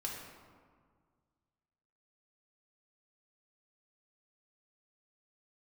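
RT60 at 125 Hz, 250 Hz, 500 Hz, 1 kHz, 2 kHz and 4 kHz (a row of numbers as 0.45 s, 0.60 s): 2.4 s, 2.1 s, 1.8 s, 1.8 s, 1.3 s, 0.90 s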